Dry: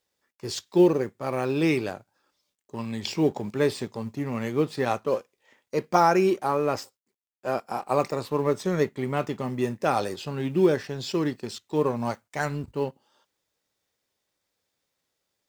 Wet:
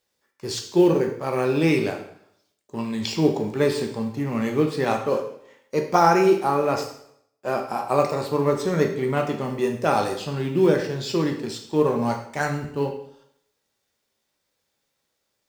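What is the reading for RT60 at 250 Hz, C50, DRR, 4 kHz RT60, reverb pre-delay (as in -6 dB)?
0.70 s, 7.5 dB, 3.0 dB, 0.65 s, 6 ms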